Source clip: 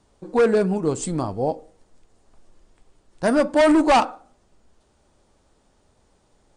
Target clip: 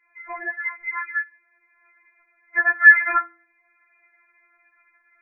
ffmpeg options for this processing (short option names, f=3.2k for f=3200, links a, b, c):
-filter_complex "[0:a]asetrate=55566,aresample=44100,adynamicequalizer=threshold=0.0224:dfrequency=1600:dqfactor=1.4:tfrequency=1600:tqfactor=1.4:attack=5:release=100:ratio=0.375:range=2:mode=cutabove:tftype=bell,acrossover=split=110|1300[a][b][c];[a]acrusher=bits=5:mix=0:aa=0.5[d];[d][b][c]amix=inputs=3:normalize=0,lowpass=f=2.1k:t=q:w=0.5098,lowpass=f=2.1k:t=q:w=0.6013,lowpass=f=2.1k:t=q:w=0.9,lowpass=f=2.1k:t=q:w=2.563,afreqshift=-2500,asplit=2[e][f];[f]acompressor=threshold=-45dB:ratio=10,volume=-1dB[g];[e][g]amix=inputs=2:normalize=0,bandreject=f=112.1:t=h:w=4,bandreject=f=224.2:t=h:w=4,bandreject=f=336.3:t=h:w=4,bandreject=f=448.4:t=h:w=4,bandreject=f=560.5:t=h:w=4,afftfilt=real='re*4*eq(mod(b,16),0)':imag='im*4*eq(mod(b,16),0)':win_size=2048:overlap=0.75"